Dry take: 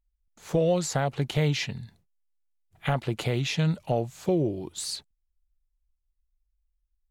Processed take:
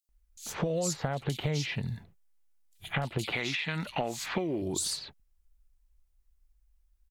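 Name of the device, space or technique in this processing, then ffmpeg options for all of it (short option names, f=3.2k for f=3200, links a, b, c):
serial compression, leveller first: -filter_complex "[0:a]asettb=1/sr,asplit=3[a][b][c];[a]atrim=end=3.234[d];[b]atrim=start=3.23:end=4.53,asetpts=PTS-STARTPTS,afade=t=in:d=0.004:c=qsin,afade=t=out:st=1.296:d=0.004:c=qsin,equalizer=f=125:t=o:w=1:g=-11,equalizer=f=250:t=o:w=1:g=3,equalizer=f=500:t=o:w=1:g=-5,equalizer=f=1k:t=o:w=1:g=6,equalizer=f=2k:t=o:w=1:g=12,equalizer=f=4k:t=o:w=1:g=6[e];[c]atrim=start=4.526[f];[d][e]acrossfade=d=0.004:c1=hsin:c2=qsin[g];[g][f]acrossfade=d=0.004:c1=qsin:c2=hsin,acompressor=threshold=-26dB:ratio=2.5,acompressor=threshold=-37dB:ratio=6,acrossover=split=3600[h][i];[h]adelay=90[j];[j][i]amix=inputs=2:normalize=0,volume=8.5dB"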